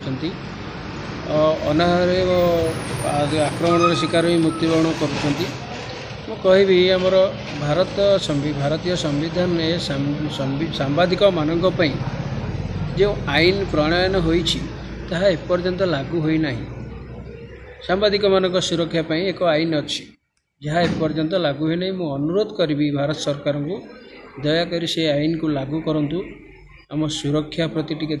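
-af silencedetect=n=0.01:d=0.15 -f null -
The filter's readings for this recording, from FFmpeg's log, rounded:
silence_start: 20.12
silence_end: 20.62 | silence_duration: 0.50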